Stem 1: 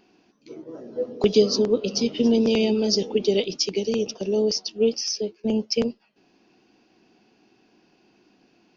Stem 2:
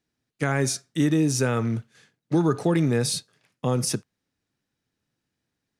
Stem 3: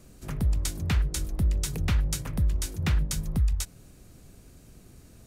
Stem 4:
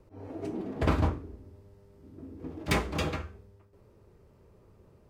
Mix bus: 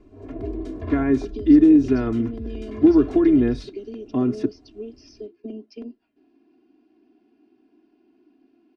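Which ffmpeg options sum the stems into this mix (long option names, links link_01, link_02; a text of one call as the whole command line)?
ffmpeg -i stem1.wav -i stem2.wav -i stem3.wav -i stem4.wav -filter_complex "[0:a]acompressor=threshold=-28dB:ratio=6,volume=-12.5dB,asplit=2[link_01][link_02];[1:a]aemphasis=mode=reproduction:type=50fm,adelay=500,volume=-7dB[link_03];[2:a]alimiter=limit=-23.5dB:level=0:latency=1:release=39,volume=-10.5dB[link_04];[3:a]aecho=1:1:1.8:0.65,alimiter=limit=-23.5dB:level=0:latency=1:release=93,volume=-5.5dB[link_05];[link_02]apad=whole_len=224554[link_06];[link_05][link_06]sidechaincompress=threshold=-49dB:ratio=8:attack=16:release=268[link_07];[link_01][link_03][link_04][link_07]amix=inputs=4:normalize=0,lowpass=3000,equalizer=frequency=270:width=1.4:gain=14,aecho=1:1:2.9:0.95" out.wav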